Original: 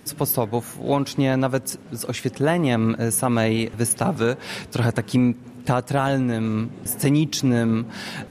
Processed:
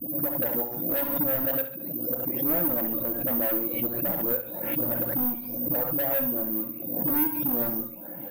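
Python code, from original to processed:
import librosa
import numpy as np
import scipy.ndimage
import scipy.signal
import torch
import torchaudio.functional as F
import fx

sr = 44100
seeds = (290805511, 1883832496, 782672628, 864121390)

y = fx.spec_delay(x, sr, highs='late', ms=576)
y = fx.double_bandpass(y, sr, hz=410.0, octaves=0.85)
y = np.clip(10.0 ** (31.5 / 20.0) * y, -1.0, 1.0) / 10.0 ** (31.5 / 20.0)
y = fx.dereverb_blind(y, sr, rt60_s=0.56)
y = fx.echo_feedback(y, sr, ms=67, feedback_pct=29, wet_db=-9.5)
y = fx.room_shoebox(y, sr, seeds[0], volume_m3=390.0, walls='furnished', distance_m=0.62)
y = (np.kron(scipy.signal.resample_poly(y, 1, 3), np.eye(3)[0]) * 3)[:len(y)]
y = fx.pre_swell(y, sr, db_per_s=43.0)
y = F.gain(torch.from_numpy(y), 3.5).numpy()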